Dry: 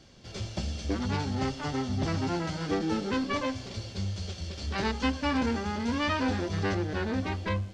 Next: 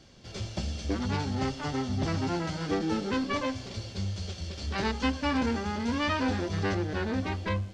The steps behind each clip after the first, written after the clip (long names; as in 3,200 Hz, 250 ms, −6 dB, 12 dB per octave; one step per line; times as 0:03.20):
no processing that can be heard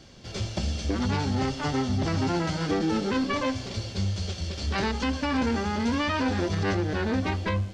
brickwall limiter −22.5 dBFS, peak gain reduction 7.5 dB
level +5 dB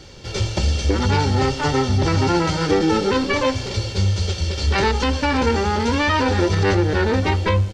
comb filter 2.2 ms, depth 47%
level +8 dB